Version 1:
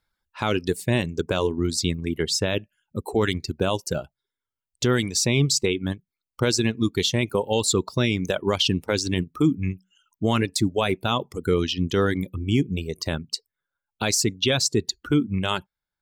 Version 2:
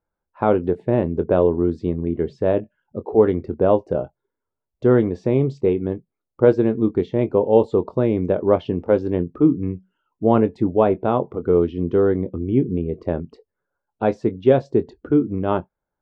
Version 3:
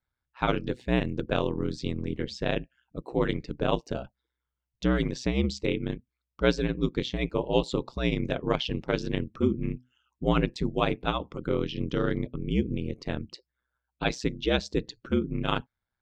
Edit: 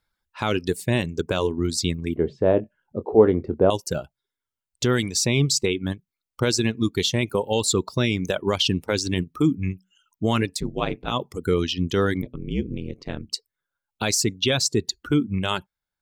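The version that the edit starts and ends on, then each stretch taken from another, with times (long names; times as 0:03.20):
1
0:02.16–0:03.70: punch in from 2
0:10.58–0:11.11: punch in from 3, crossfade 0.10 s
0:12.22–0:13.32: punch in from 3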